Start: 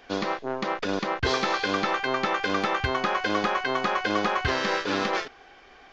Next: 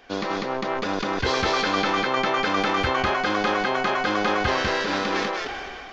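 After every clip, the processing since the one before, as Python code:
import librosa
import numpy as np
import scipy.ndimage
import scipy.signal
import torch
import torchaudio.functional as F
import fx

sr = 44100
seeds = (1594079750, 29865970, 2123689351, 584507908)

y = x + 10.0 ** (-3.5 / 20.0) * np.pad(x, (int(197 * sr / 1000.0), 0))[:len(x)]
y = fx.sustainer(y, sr, db_per_s=23.0)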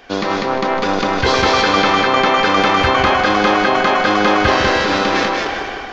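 y = fx.echo_filtered(x, sr, ms=155, feedback_pct=59, hz=4600.0, wet_db=-8.0)
y = F.gain(torch.from_numpy(y), 8.0).numpy()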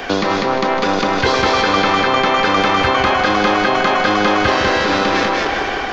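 y = fx.band_squash(x, sr, depth_pct=70)
y = F.gain(torch.from_numpy(y), -1.0).numpy()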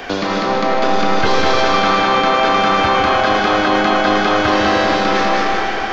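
y = fx.rev_freeverb(x, sr, rt60_s=2.4, hf_ratio=0.9, predelay_ms=30, drr_db=1.5)
y = F.gain(torch.from_numpy(y), -3.0).numpy()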